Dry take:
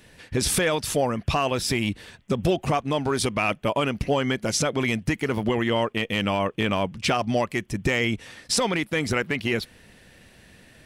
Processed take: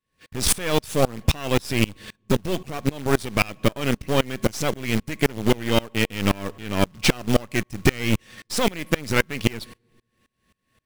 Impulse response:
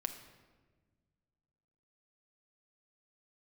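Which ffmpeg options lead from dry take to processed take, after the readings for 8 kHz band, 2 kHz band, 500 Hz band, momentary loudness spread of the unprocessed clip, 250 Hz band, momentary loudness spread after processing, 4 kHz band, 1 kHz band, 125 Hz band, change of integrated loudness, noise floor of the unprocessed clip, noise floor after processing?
+0.5 dB, 0.0 dB, 0.0 dB, 4 LU, +1.5 dB, 6 LU, +1.0 dB, −2.5 dB, +2.5 dB, +1.0 dB, −54 dBFS, −75 dBFS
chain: -filter_complex "[0:a]aeval=exprs='val(0)+0.00251*sin(2*PI*1100*n/s)':channel_layout=same,equalizer=frequency=900:width=1.4:gain=-6.5,acrusher=bits=3:mode=log:mix=0:aa=0.000001,agate=range=-18dB:threshold=-44dB:ratio=16:detection=peak,aeval=exprs='0.266*(cos(1*acos(clip(val(0)/0.266,-1,1)))-cos(1*PI/2))+0.0422*(cos(6*acos(clip(val(0)/0.266,-1,1)))-cos(6*PI/2))':channel_layout=same,asplit=2[link_01][link_02];[1:a]atrim=start_sample=2205,asetrate=66150,aresample=44100[link_03];[link_02][link_03]afir=irnorm=-1:irlink=0,volume=-14.5dB[link_04];[link_01][link_04]amix=inputs=2:normalize=0,aeval=exprs='val(0)*pow(10,-27*if(lt(mod(-3.8*n/s,1),2*abs(-3.8)/1000),1-mod(-3.8*n/s,1)/(2*abs(-3.8)/1000),(mod(-3.8*n/s,1)-2*abs(-3.8)/1000)/(1-2*abs(-3.8)/1000))/20)':channel_layout=same,volume=7.5dB"

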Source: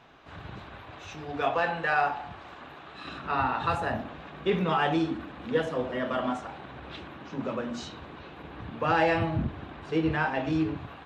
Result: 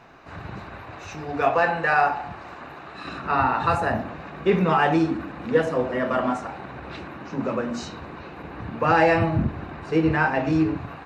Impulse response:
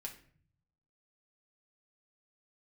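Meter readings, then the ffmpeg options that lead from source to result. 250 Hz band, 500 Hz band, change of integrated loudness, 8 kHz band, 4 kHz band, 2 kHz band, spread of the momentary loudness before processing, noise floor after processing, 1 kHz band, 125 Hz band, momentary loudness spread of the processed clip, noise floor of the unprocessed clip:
+6.0 dB, +6.5 dB, +6.0 dB, can't be measured, +1.0 dB, +6.0 dB, 18 LU, −41 dBFS, +6.0 dB, +6.5 dB, 19 LU, −47 dBFS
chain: -filter_complex "[0:a]equalizer=frequency=3300:width_type=o:width=0.28:gain=-13,asplit=2[link_01][link_02];[1:a]atrim=start_sample=2205[link_03];[link_02][link_03]afir=irnorm=-1:irlink=0,volume=-7.5dB[link_04];[link_01][link_04]amix=inputs=2:normalize=0,volume=4.5dB"

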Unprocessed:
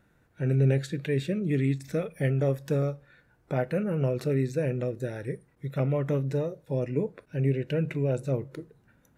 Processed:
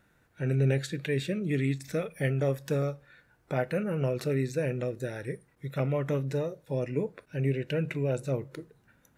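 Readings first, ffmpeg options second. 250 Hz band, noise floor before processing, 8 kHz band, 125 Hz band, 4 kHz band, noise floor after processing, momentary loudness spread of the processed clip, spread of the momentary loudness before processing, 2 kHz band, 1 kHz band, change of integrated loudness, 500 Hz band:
−2.5 dB, −66 dBFS, can't be measured, −3.0 dB, +2.5 dB, −67 dBFS, 8 LU, 8 LU, +2.0 dB, 0.0 dB, −2.0 dB, −1.5 dB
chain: -af "tiltshelf=frequency=830:gain=-3"

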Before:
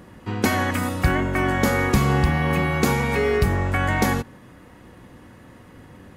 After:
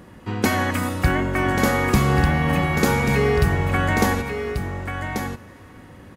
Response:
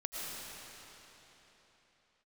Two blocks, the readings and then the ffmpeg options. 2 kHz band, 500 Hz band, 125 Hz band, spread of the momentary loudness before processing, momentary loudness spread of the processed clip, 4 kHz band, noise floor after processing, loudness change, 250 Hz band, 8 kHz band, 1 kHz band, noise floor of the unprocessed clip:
+1.5 dB, +1.0 dB, +1.5 dB, 4 LU, 10 LU, +1.5 dB, −45 dBFS, +0.5 dB, +1.0 dB, +1.5 dB, +1.5 dB, −47 dBFS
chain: -filter_complex "[0:a]aecho=1:1:1137:0.447,asplit=2[link_01][link_02];[1:a]atrim=start_sample=2205[link_03];[link_02][link_03]afir=irnorm=-1:irlink=0,volume=-21.5dB[link_04];[link_01][link_04]amix=inputs=2:normalize=0"

